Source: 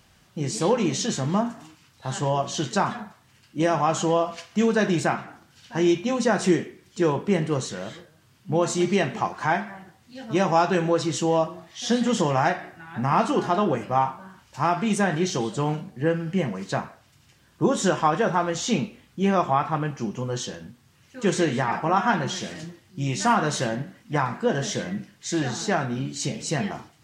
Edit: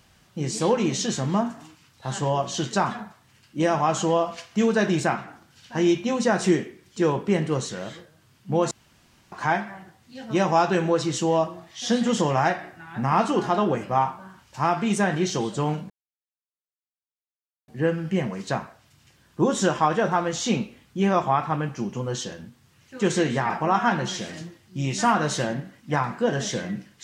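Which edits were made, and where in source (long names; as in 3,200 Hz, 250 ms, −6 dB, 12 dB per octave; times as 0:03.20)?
0:08.71–0:09.32: fill with room tone
0:15.90: splice in silence 1.78 s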